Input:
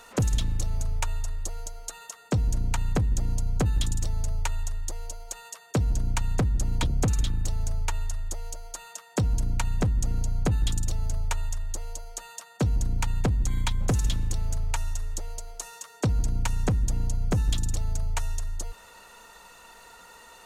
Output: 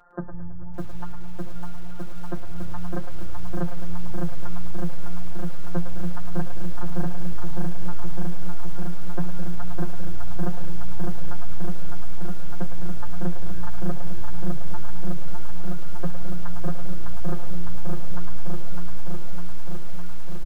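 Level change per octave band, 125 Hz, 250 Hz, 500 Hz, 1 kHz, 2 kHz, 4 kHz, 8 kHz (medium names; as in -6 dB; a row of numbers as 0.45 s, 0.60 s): -3.5 dB, +2.5 dB, -0.5 dB, -1.0 dB, -4.0 dB, -10.5 dB, -16.0 dB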